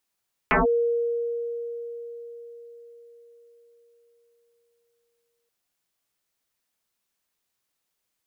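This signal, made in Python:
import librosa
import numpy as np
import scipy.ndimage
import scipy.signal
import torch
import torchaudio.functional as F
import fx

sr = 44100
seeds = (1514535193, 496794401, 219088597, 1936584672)

y = fx.fm2(sr, length_s=4.98, level_db=-16.0, carrier_hz=470.0, ratio=0.46, index=9.8, index_s=0.15, decay_s=4.98, shape='linear')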